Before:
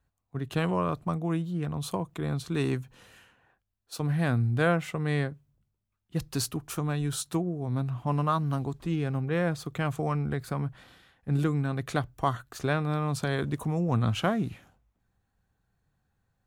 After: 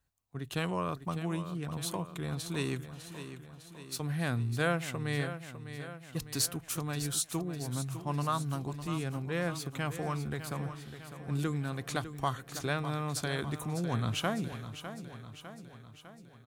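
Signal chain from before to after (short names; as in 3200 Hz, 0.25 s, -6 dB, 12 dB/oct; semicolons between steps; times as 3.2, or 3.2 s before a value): high shelf 2400 Hz +10 dB; feedback echo 0.603 s, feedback 57%, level -11 dB; gain -6.5 dB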